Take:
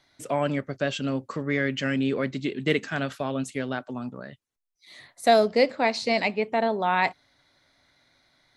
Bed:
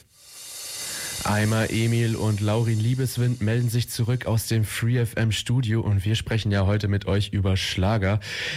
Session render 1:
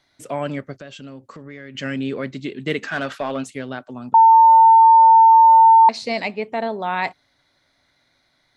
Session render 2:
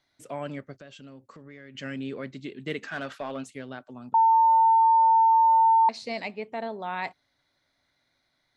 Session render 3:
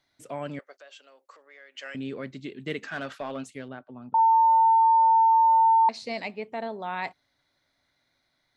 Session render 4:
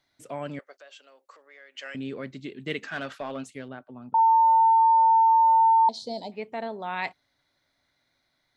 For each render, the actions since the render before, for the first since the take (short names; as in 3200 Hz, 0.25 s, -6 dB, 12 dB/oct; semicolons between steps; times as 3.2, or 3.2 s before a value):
0.73–1.75 compressor 3:1, threshold -37 dBFS; 2.82–3.48 overdrive pedal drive 16 dB, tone 2600 Hz, clips at -13.5 dBFS; 4.14–5.89 bleep 901 Hz -6.5 dBFS
gain -9 dB
0.59–1.95 HPF 530 Hz 24 dB/oct; 3.68–4.19 air absorption 340 m
5.67–6.32 spectral gain 1000–3000 Hz -23 dB; dynamic EQ 2900 Hz, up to +5 dB, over -40 dBFS, Q 1.1